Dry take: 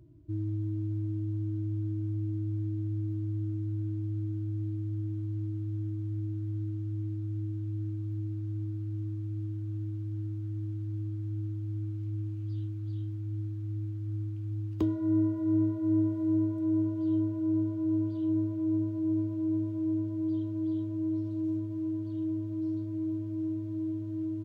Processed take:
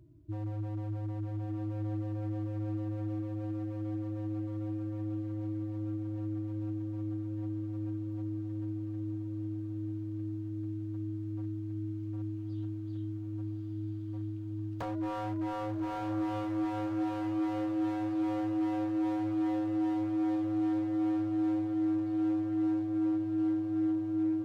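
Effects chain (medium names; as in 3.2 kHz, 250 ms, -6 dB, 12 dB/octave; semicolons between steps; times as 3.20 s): wavefolder -29 dBFS; echo that smears into a reverb 1211 ms, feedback 44%, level -4 dB; trim -2.5 dB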